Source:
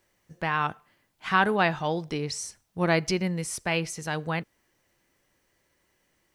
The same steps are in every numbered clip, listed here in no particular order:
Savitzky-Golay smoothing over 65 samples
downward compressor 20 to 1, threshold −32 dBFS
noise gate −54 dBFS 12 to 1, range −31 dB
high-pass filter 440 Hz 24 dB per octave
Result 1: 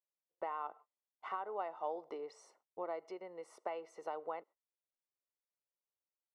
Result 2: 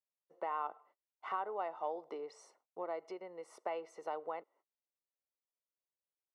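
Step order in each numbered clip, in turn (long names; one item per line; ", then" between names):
downward compressor, then high-pass filter, then noise gate, then Savitzky-Golay smoothing
noise gate, then Savitzky-Golay smoothing, then downward compressor, then high-pass filter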